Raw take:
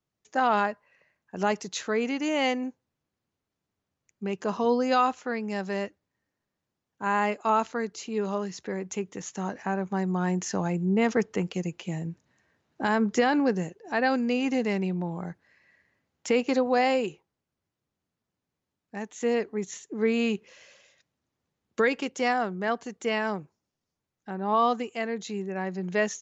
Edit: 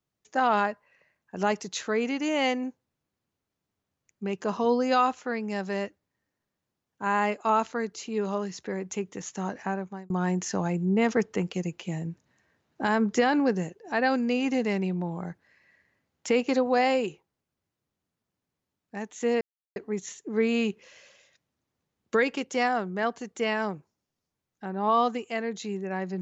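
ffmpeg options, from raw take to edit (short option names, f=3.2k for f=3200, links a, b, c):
-filter_complex "[0:a]asplit=3[a][b][c];[a]atrim=end=10.1,asetpts=PTS-STARTPTS,afade=t=out:st=9.65:d=0.45[d];[b]atrim=start=10.1:end=19.41,asetpts=PTS-STARTPTS,afade=t=in:d=0.004:c=hsin,afade=t=out:st=9.306:d=0.004:c=hsin,apad=pad_dur=0.35[e];[c]atrim=start=19.41,asetpts=PTS-STARTPTS,afade=t=in:d=0.004:c=hsin[f];[d][e][f]concat=n=3:v=0:a=1"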